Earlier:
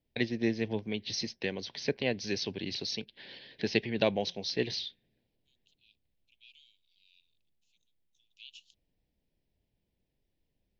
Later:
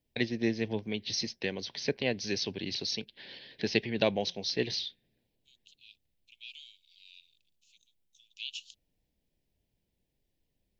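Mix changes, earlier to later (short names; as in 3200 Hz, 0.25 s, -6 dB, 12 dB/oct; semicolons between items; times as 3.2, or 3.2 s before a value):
second voice +9.5 dB; master: add high shelf 6100 Hz +6 dB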